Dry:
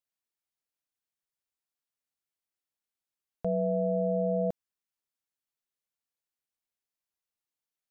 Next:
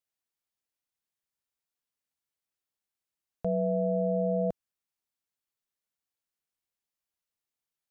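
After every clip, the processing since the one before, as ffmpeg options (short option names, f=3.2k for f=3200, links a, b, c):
-af "equalizer=f=71:t=o:w=2:g=2.5"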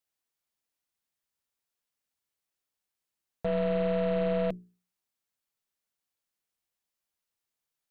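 -af "bandreject=f=60:t=h:w=6,bandreject=f=120:t=h:w=6,bandreject=f=180:t=h:w=6,bandreject=f=240:t=h:w=6,bandreject=f=300:t=h:w=6,bandreject=f=360:t=h:w=6,bandreject=f=420:t=h:w=6,aeval=exprs='0.1*(cos(1*acos(clip(val(0)/0.1,-1,1)))-cos(1*PI/2))+0.00708*(cos(5*acos(clip(val(0)/0.1,-1,1)))-cos(5*PI/2))+0.00794*(cos(8*acos(clip(val(0)/0.1,-1,1)))-cos(8*PI/2))':c=same"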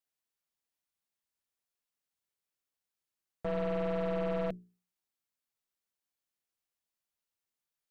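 -af "aeval=exprs='clip(val(0),-1,0.0335)':c=same,volume=-4dB"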